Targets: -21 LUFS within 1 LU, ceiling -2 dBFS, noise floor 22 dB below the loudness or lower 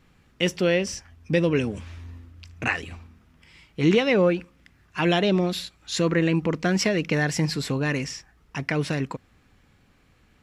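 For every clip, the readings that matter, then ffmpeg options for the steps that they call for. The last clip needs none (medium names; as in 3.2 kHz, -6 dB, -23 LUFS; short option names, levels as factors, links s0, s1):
loudness -24.5 LUFS; peak level -8.0 dBFS; loudness target -21.0 LUFS
-> -af "volume=1.5"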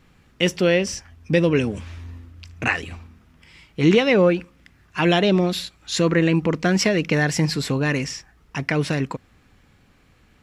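loudness -21.0 LUFS; peak level -4.5 dBFS; noise floor -57 dBFS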